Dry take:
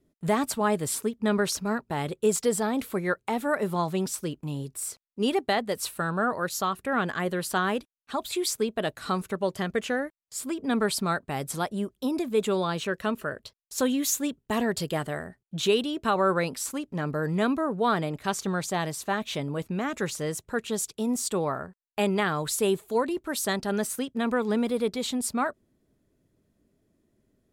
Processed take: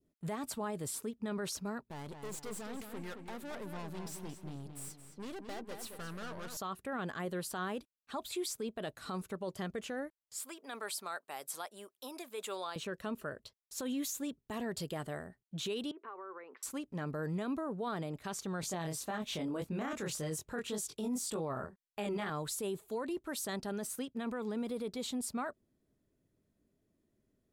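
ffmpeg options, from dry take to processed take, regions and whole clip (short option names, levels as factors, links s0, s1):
-filter_complex "[0:a]asettb=1/sr,asplit=3[s0][s1][s2];[s0]atrim=end=1.834[s3];[s1]atrim=start=1.83:end=6.57,asetpts=PTS-STARTPTS,afade=t=in:d=0.004:c=qsin,afade=t=out:st=4.736:d=0.004:c=qsin,aeval=exprs='(tanh(50.1*val(0)+0.6)-tanh(0.6))/50.1':c=same,asplit=2[s4][s5];[s5]adelay=221,lowpass=f=4600:p=1,volume=0.473,asplit=2[s6][s7];[s7]adelay=221,lowpass=f=4600:p=1,volume=0.42,asplit=2[s8][s9];[s9]adelay=221,lowpass=f=4600:p=1,volume=0.42,asplit=2[s10][s11];[s11]adelay=221,lowpass=f=4600:p=1,volume=0.42,asplit=2[s12][s13];[s13]adelay=221,lowpass=f=4600:p=1,volume=0.42[s14];[s4][s6][s8][s10][s12][s14]amix=inputs=6:normalize=0,atrim=end_sample=209034[s15];[s2]atrim=start=6.566[s16];[s3][s15]acrossfade=d=0.004:c1=hsin:c2=qsin[s17];[s17][s16]acrossfade=d=0.004:c1=qsin:c2=hsin,asettb=1/sr,asplit=3[s18][s19][s20];[s18]atrim=end=10.404[s21];[s19]atrim=start=10.4:end=12.76,asetpts=PTS-STARTPTS,afade=t=in:d=0.004:c=qsin,afade=t=out:st=2.356:d=0.004:c=qsin,highpass=650,highshelf=f=9400:g=8[s22];[s20]atrim=start=12.756[s23];[s21][s22]acrossfade=d=0.004:c1=hsin:c2=qsin[s24];[s24][s23]acrossfade=d=0.004:c1=qsin:c2=hsin,asettb=1/sr,asplit=3[s25][s26][s27];[s25]atrim=end=15.914[s28];[s26]atrim=start=15.91:end=16.63,asetpts=PTS-STARTPTS,afade=t=in:d=0.004:c=qsin,afade=t=out:st=0.716:d=0.004:c=qsin,acompressor=threshold=0.0158:ratio=12:attack=3.2:release=140:knee=1:detection=peak,highpass=f=350:w=0.5412,highpass=f=350:w=1.3066,equalizer=f=400:t=q:w=4:g=6,equalizer=f=620:t=q:w=4:g=-6,equalizer=f=1100:t=q:w=4:g=7,equalizer=f=2000:t=q:w=4:g=3,lowpass=f=2200:w=0.5412,lowpass=f=2200:w=1.3066[s29];[s27]atrim=start=16.626[s30];[s28][s29]acrossfade=d=0.004:c1=hsin:c2=qsin[s31];[s31][s30]acrossfade=d=0.004:c1=qsin:c2=hsin,asettb=1/sr,asplit=3[s32][s33][s34];[s32]atrim=end=18.614[s35];[s33]atrim=start=18.61:end=22.3,asetpts=PTS-STARTPTS,afade=t=in:d=0.004:c=qsin,afade=t=out:st=3.686:d=0.004:c=qsin,acontrast=83,flanger=delay=18.5:depth=6.7:speed=1.8[s36];[s34]atrim=start=22.296[s37];[s35][s36]acrossfade=d=0.004:c1=hsin:c2=qsin[s38];[s38][s37]acrossfade=d=0.004:c1=qsin:c2=hsin,adynamicequalizer=threshold=0.00794:dfrequency=2000:dqfactor=0.96:tfrequency=2000:tqfactor=0.96:attack=5:release=100:ratio=0.375:range=2:mode=cutabove:tftype=bell,alimiter=limit=0.0794:level=0:latency=1:release=25,volume=0.398"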